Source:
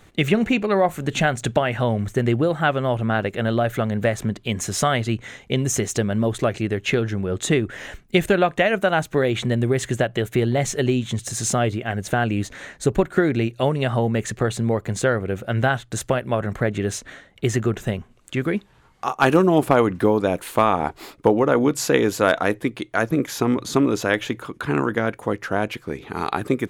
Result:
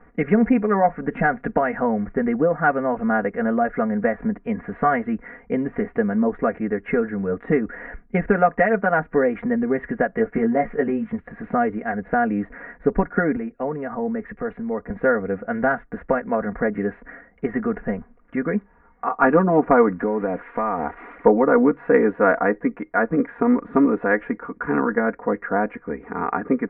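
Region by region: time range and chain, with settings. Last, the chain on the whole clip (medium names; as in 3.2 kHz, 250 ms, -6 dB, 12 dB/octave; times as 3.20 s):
10.17–11.12 s: treble shelf 7.1 kHz -10 dB + band-stop 3.5 kHz, Q 18 + doubling 18 ms -4.5 dB
13.36–14.90 s: compression 5:1, threshold -21 dBFS + three bands expanded up and down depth 100%
19.99–21.26 s: zero-crossing glitches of -17 dBFS + compression 3:1, threshold -20 dBFS
whole clip: steep low-pass 2 kHz 48 dB/octave; peaking EQ 110 Hz -9 dB 0.61 oct; comb 4.2 ms, depth 83%; trim -1 dB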